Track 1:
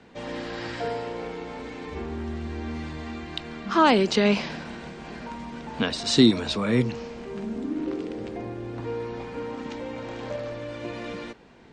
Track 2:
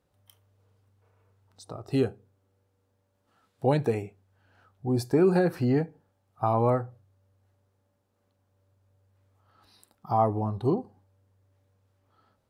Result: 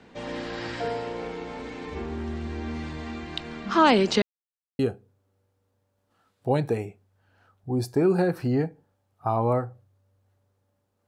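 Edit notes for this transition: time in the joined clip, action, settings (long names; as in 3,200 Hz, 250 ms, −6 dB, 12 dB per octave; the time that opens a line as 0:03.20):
track 1
0:04.22–0:04.79: silence
0:04.79: continue with track 2 from 0:01.96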